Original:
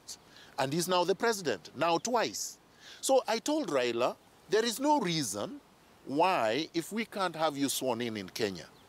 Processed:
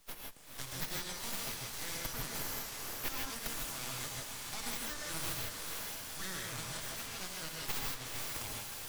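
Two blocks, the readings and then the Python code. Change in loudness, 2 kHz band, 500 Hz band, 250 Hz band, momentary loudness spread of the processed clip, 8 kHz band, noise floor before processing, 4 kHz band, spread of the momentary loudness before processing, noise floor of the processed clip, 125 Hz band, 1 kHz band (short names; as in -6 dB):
-8.0 dB, -5.0 dB, -19.5 dB, -16.0 dB, 3 LU, -1.5 dB, -61 dBFS, -4.0 dB, 10 LU, -48 dBFS, -5.0 dB, -14.5 dB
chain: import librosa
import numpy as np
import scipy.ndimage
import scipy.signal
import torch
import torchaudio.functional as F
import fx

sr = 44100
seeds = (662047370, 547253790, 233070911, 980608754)

y = scipy.signal.lfilter([1.0, -0.9], [1.0], x)
y = fx.echo_diffused(y, sr, ms=488, feedback_pct=57, wet_db=-3.5)
y = np.abs(y)
y = fx.rev_gated(y, sr, seeds[0], gate_ms=180, shape='rising', drr_db=-1.0)
y = fx.band_squash(y, sr, depth_pct=40)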